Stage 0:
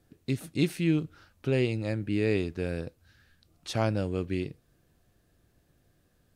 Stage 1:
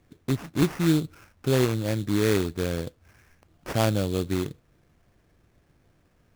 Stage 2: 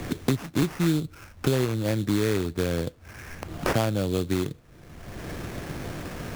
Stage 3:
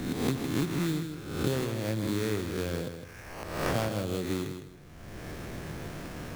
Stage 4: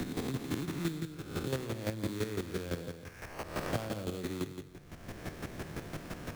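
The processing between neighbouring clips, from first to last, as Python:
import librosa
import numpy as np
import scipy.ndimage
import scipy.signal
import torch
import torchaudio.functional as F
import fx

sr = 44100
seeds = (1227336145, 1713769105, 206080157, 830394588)

y1 = fx.sample_hold(x, sr, seeds[0], rate_hz=3900.0, jitter_pct=20)
y1 = y1 * 10.0 ** (4.0 / 20.0)
y2 = fx.band_squash(y1, sr, depth_pct=100)
y3 = fx.spec_swells(y2, sr, rise_s=0.84)
y3 = fx.echo_feedback(y3, sr, ms=158, feedback_pct=26, wet_db=-8)
y3 = y3 * 10.0 ** (-7.5 / 20.0)
y4 = fx.chopper(y3, sr, hz=5.9, depth_pct=65, duty_pct=20)
y4 = fx.band_squash(y4, sr, depth_pct=40)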